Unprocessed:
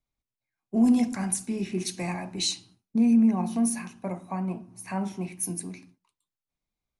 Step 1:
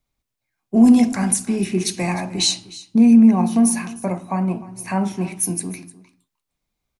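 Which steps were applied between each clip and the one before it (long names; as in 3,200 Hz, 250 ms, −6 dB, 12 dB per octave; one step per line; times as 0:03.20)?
single-tap delay 305 ms −18.5 dB
level +9 dB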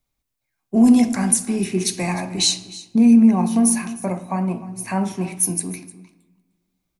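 high-shelf EQ 7,400 Hz +5 dB
on a send at −15.5 dB: convolution reverb RT60 1.4 s, pre-delay 7 ms
on the sum: level −1 dB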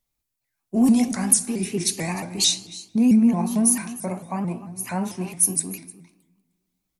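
high-shelf EQ 5,200 Hz +6.5 dB
pitch modulation by a square or saw wave saw up 4.5 Hz, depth 160 cents
level −4.5 dB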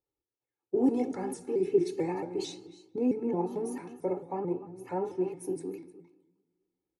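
resonant band-pass 360 Hz, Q 1.5
comb filter 2.3 ms, depth 96%
level +1 dB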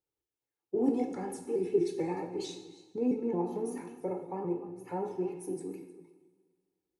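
coupled-rooms reverb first 0.68 s, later 2 s, from −16 dB, DRR 5.5 dB
level −3 dB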